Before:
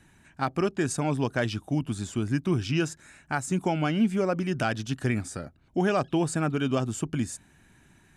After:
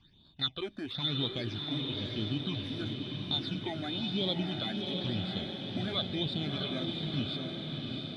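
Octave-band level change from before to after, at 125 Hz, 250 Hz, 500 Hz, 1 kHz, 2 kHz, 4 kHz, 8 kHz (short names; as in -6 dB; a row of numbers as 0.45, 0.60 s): -7.0 dB, -7.5 dB, -10.0 dB, -13.0 dB, -10.0 dB, +8.5 dB, under -20 dB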